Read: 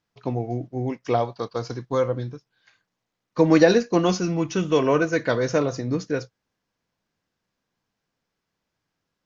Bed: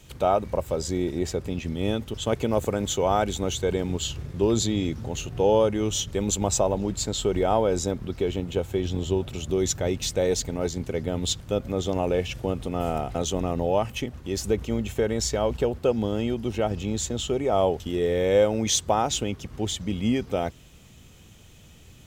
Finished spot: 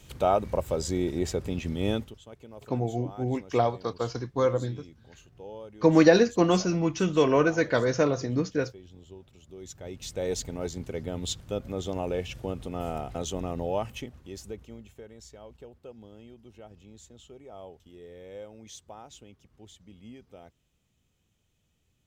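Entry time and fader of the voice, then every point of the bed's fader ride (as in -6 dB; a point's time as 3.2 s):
2.45 s, -2.0 dB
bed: 1.99 s -1.5 dB
2.23 s -22.5 dB
9.48 s -22.5 dB
10.3 s -6 dB
13.86 s -6 dB
15.09 s -23 dB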